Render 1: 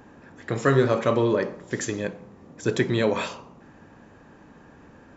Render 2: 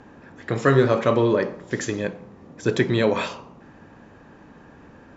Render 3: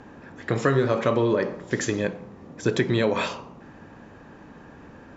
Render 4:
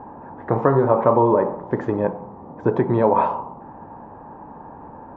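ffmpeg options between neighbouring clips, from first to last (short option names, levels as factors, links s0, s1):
-af "lowpass=6400,volume=1.33"
-af "acompressor=threshold=0.1:ratio=3,volume=1.19"
-af "lowpass=f=900:t=q:w=4.9,volume=1.33"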